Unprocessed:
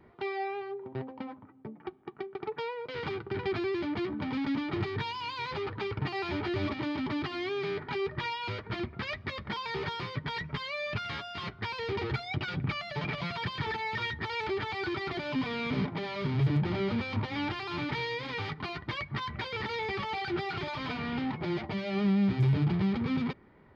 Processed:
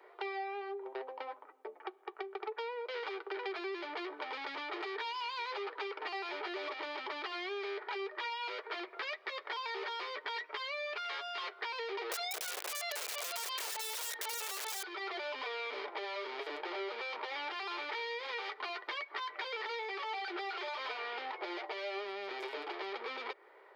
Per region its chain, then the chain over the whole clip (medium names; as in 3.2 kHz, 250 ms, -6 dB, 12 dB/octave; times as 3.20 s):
12.11–14.83 s: integer overflow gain 30 dB + treble shelf 4.4 kHz +7.5 dB + level flattener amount 100%
whole clip: steep high-pass 400 Hz 48 dB/octave; compression 4:1, threshold -42 dBFS; trim +4 dB